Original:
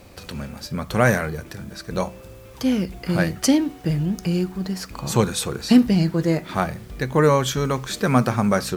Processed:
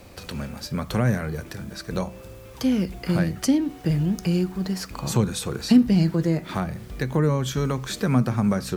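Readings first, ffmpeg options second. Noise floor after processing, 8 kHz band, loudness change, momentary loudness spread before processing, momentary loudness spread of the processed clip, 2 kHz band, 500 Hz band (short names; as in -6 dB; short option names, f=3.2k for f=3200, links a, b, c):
-43 dBFS, -4.5 dB, -2.5 dB, 13 LU, 13 LU, -7.5 dB, -6.0 dB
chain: -filter_complex "[0:a]acrossover=split=310[a][b];[b]acompressor=threshold=-27dB:ratio=6[c];[a][c]amix=inputs=2:normalize=0"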